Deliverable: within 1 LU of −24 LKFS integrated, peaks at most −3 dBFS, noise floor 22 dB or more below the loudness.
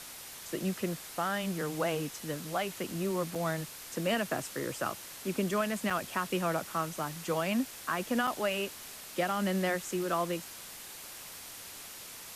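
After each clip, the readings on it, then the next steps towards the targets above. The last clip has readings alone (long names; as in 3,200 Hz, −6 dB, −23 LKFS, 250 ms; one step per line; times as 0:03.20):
number of dropouts 3; longest dropout 4.9 ms; background noise floor −47 dBFS; target noise floor −56 dBFS; integrated loudness −34.0 LKFS; sample peak −18.5 dBFS; target loudness −24.0 LKFS
→ repair the gap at 0:03.35/0:05.90/0:08.27, 4.9 ms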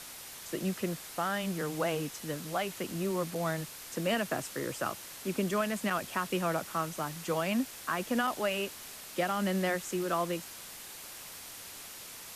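number of dropouts 0; background noise floor −47 dBFS; target noise floor −56 dBFS
→ broadband denoise 9 dB, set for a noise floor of −47 dBFS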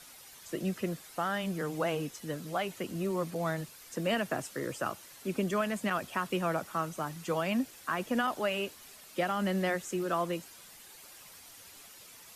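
background noise floor −53 dBFS; target noise floor −56 dBFS
→ broadband denoise 6 dB, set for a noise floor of −53 dBFS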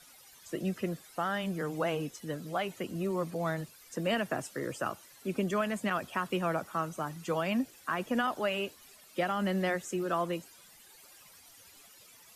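background noise floor −57 dBFS; integrated loudness −34.0 LKFS; sample peak −19.0 dBFS; target loudness −24.0 LKFS
→ level +10 dB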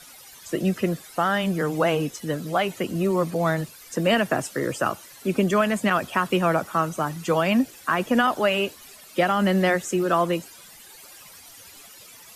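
integrated loudness −24.0 LKFS; sample peak −9.0 dBFS; background noise floor −47 dBFS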